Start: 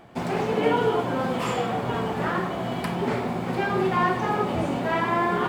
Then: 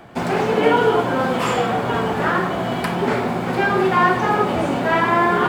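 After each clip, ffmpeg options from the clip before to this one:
-filter_complex "[0:a]equalizer=f=1500:w=3.6:g=3.5,acrossover=split=250|910[s0][s1][s2];[s0]alimiter=level_in=1.88:limit=0.0631:level=0:latency=1,volume=0.531[s3];[s3][s1][s2]amix=inputs=3:normalize=0,volume=2.11"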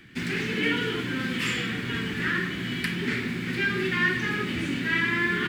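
-af "firequalizer=gain_entry='entry(300,0);entry(660,-26);entry(1800,7);entry(7600,1)':delay=0.05:min_phase=1,volume=0.501"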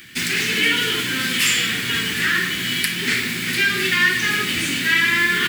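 -filter_complex "[0:a]crystalizer=i=9.5:c=0,asplit=2[s0][s1];[s1]alimiter=limit=0.355:level=0:latency=1:release=250,volume=1.06[s2];[s0][s2]amix=inputs=2:normalize=0,volume=0.501"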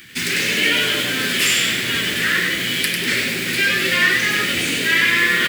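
-filter_complex "[0:a]asplit=5[s0][s1][s2][s3][s4];[s1]adelay=98,afreqshift=150,volume=0.596[s5];[s2]adelay=196,afreqshift=300,volume=0.202[s6];[s3]adelay=294,afreqshift=450,volume=0.0692[s7];[s4]adelay=392,afreqshift=600,volume=0.0234[s8];[s0][s5][s6][s7][s8]amix=inputs=5:normalize=0"

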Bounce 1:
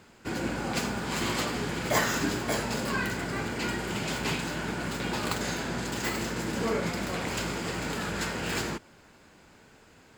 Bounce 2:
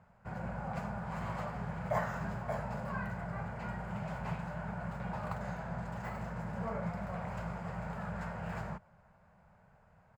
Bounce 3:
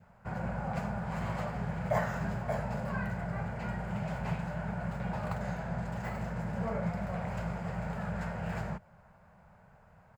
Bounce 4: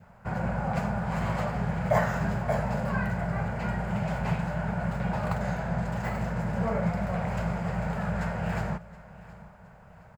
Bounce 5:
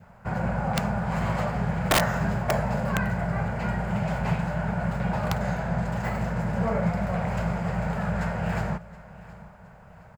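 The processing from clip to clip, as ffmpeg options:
-af "firequalizer=gain_entry='entry(190,0);entry(280,-25);entry(610,0);entry(3400,-24)':delay=0.05:min_phase=1,volume=0.708"
-af "adynamicequalizer=threshold=0.00158:dfrequency=1100:dqfactor=1.8:tfrequency=1100:tqfactor=1.8:attack=5:release=100:ratio=0.375:range=2.5:mode=cutabove:tftype=bell,volume=1.68"
-af "aecho=1:1:719|1438|2157:0.106|0.0424|0.0169,volume=2"
-af "aeval=exprs='(mod(6.31*val(0)+1,2)-1)/6.31':c=same,volume=1.33"

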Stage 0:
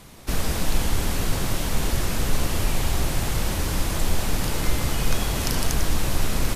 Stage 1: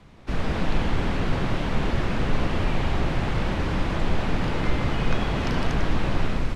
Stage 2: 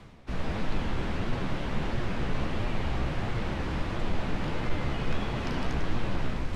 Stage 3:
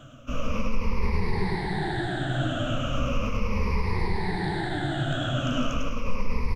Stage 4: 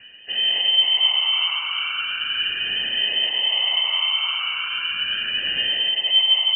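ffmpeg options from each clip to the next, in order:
-filter_complex "[0:a]bass=f=250:g=3,treble=f=4000:g=-12,acrossover=split=130|4500[s0][s1][s2];[s1]dynaudnorm=f=140:g=5:m=2.24[s3];[s0][s3][s2]amix=inputs=3:normalize=0,lowpass=6900,volume=0.562"
-af "areverse,acompressor=mode=upward:threshold=0.0708:ratio=2.5,areverse,asoftclip=type=hard:threshold=0.224,flanger=delay=8.3:depth=7.9:regen=51:speed=1.5:shape=sinusoidal,volume=0.794"
-af "afftfilt=real='re*pow(10,23/40*sin(2*PI*(0.86*log(max(b,1)*sr/1024/100)/log(2)-(-0.37)*(pts-256)/sr)))':imag='im*pow(10,23/40*sin(2*PI*(0.86*log(max(b,1)*sr/1024/100)/log(2)-(-0.37)*(pts-256)/sr)))':win_size=1024:overlap=0.75,alimiter=limit=0.158:level=0:latency=1:release=65,aecho=1:1:103:0.596,volume=0.841"
-af "lowpass=f=2600:t=q:w=0.5098,lowpass=f=2600:t=q:w=0.6013,lowpass=f=2600:t=q:w=0.9,lowpass=f=2600:t=q:w=2.563,afreqshift=-3100,volume=1.33"

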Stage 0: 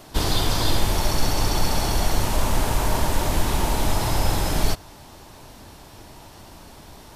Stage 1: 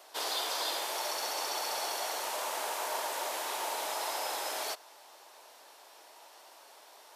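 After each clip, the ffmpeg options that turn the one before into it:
-af "highpass=f=490:w=0.5412,highpass=f=490:w=1.3066,volume=0.422"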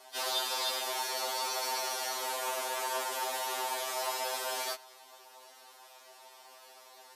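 -filter_complex "[0:a]acrossover=split=260|1100|3200[s0][s1][s2][s3];[s2]volume=50.1,asoftclip=hard,volume=0.02[s4];[s0][s1][s4][s3]amix=inputs=4:normalize=0,afftfilt=real='re*2.45*eq(mod(b,6),0)':imag='im*2.45*eq(mod(b,6),0)':win_size=2048:overlap=0.75,volume=1.41"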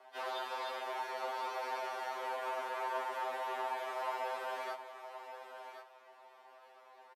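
-filter_complex "[0:a]acrossover=split=240 2500:gain=0.0794 1 0.0794[s0][s1][s2];[s0][s1][s2]amix=inputs=3:normalize=0,aecho=1:1:1074:0.316,volume=0.794"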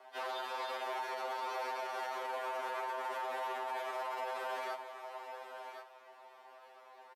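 -af "alimiter=level_in=2.82:limit=0.0631:level=0:latency=1:release=21,volume=0.355,volume=1.26"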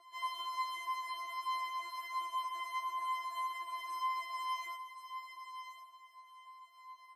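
-af "afftfilt=real='re*4*eq(mod(b,16),0)':imag='im*4*eq(mod(b,16),0)':win_size=2048:overlap=0.75,volume=1.26"

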